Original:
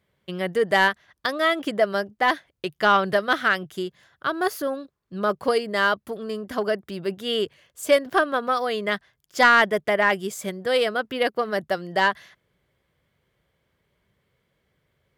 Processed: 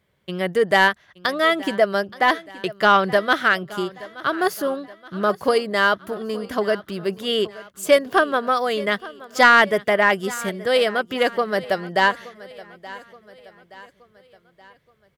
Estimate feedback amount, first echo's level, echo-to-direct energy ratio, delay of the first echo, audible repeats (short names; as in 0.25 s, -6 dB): 48%, -19.0 dB, -18.0 dB, 0.874 s, 3